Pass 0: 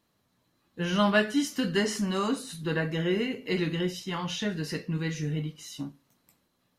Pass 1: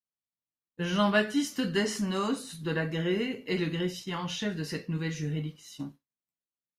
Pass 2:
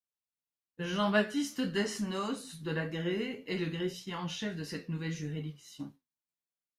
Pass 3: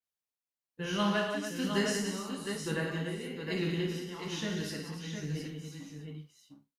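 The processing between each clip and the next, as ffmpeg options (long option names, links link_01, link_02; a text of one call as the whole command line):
ffmpeg -i in.wav -af "agate=range=-33dB:threshold=-39dB:ratio=3:detection=peak,volume=-1.5dB" out.wav
ffmpeg -i in.wav -af "flanger=delay=9.2:depth=5.2:regen=61:speed=1.7:shape=triangular" out.wav
ffmpeg -i in.wav -af "tremolo=f=1.1:d=0.66,aecho=1:1:54|108|180|287|710|756:0.501|0.355|0.447|0.335|0.473|0.133,adynamicequalizer=threshold=0.00282:dfrequency=4800:dqfactor=0.7:tfrequency=4800:tqfactor=0.7:attack=5:release=100:ratio=0.375:range=2.5:mode=boostabove:tftype=highshelf" out.wav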